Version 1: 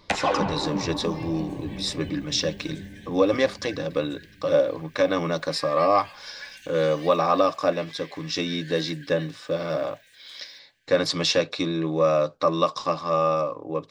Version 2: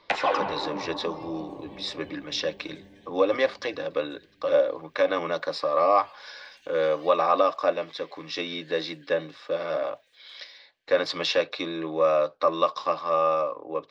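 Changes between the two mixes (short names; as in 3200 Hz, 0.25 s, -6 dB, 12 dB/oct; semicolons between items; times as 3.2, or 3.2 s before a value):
second sound: add differentiator; master: add three-band isolator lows -15 dB, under 350 Hz, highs -21 dB, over 4600 Hz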